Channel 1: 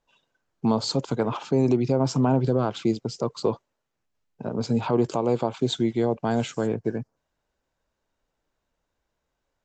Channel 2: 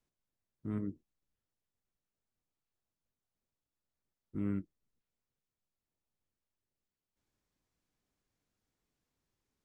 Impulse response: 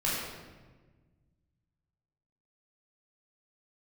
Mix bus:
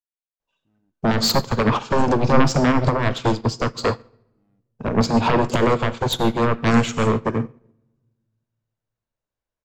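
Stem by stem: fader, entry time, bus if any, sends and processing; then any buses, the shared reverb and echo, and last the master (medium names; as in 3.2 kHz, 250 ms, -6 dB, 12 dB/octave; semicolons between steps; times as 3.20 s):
+2.0 dB, 0.40 s, send -15.5 dB, compression 3:1, threshold -23 dBFS, peak gain reduction 6 dB; sine folder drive 12 dB, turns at -12.5 dBFS
+2.0 dB, 0.00 s, no send, overload inside the chain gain 33.5 dB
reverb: on, RT60 1.4 s, pre-delay 12 ms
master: upward expansion 2.5:1, over -30 dBFS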